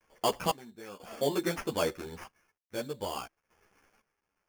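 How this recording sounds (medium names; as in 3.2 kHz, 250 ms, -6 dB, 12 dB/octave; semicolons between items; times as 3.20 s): a quantiser's noise floor 12-bit, dither none; random-step tremolo 2 Hz, depth 95%; aliases and images of a low sample rate 3.9 kHz, jitter 0%; a shimmering, thickened sound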